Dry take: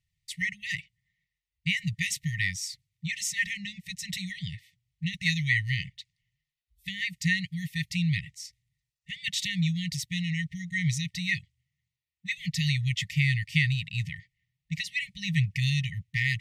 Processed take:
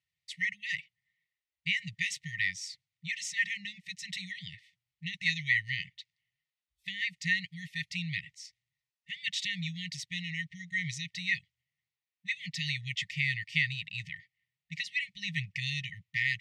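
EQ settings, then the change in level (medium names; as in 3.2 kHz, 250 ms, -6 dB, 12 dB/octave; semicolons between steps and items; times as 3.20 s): high-pass 590 Hz 6 dB/octave; distance through air 62 m; treble shelf 5.7 kHz -4 dB; 0.0 dB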